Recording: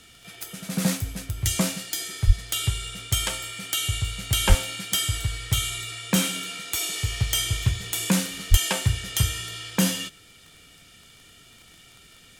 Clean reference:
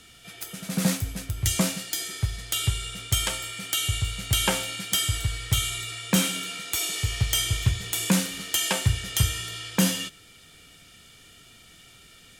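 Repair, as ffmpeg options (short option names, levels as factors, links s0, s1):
-filter_complex "[0:a]adeclick=t=4,asplit=3[s0][s1][s2];[s0]afade=t=out:st=2.26:d=0.02[s3];[s1]highpass=f=140:w=0.5412,highpass=f=140:w=1.3066,afade=t=in:st=2.26:d=0.02,afade=t=out:st=2.38:d=0.02[s4];[s2]afade=t=in:st=2.38:d=0.02[s5];[s3][s4][s5]amix=inputs=3:normalize=0,asplit=3[s6][s7][s8];[s6]afade=t=out:st=4.48:d=0.02[s9];[s7]highpass=f=140:w=0.5412,highpass=f=140:w=1.3066,afade=t=in:st=4.48:d=0.02,afade=t=out:st=4.6:d=0.02[s10];[s8]afade=t=in:st=4.6:d=0.02[s11];[s9][s10][s11]amix=inputs=3:normalize=0,asplit=3[s12][s13][s14];[s12]afade=t=out:st=8.5:d=0.02[s15];[s13]highpass=f=140:w=0.5412,highpass=f=140:w=1.3066,afade=t=in:st=8.5:d=0.02,afade=t=out:st=8.62:d=0.02[s16];[s14]afade=t=in:st=8.62:d=0.02[s17];[s15][s16][s17]amix=inputs=3:normalize=0"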